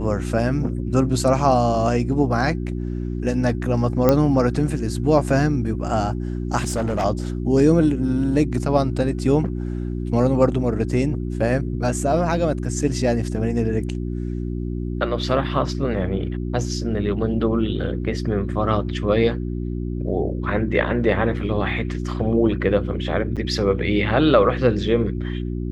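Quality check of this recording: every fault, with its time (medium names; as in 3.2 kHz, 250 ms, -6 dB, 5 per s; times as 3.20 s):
hum 60 Hz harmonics 6 -26 dBFS
4.09 s: pop -4 dBFS
6.58–7.05 s: clipped -18 dBFS
23.36–23.37 s: dropout 7.2 ms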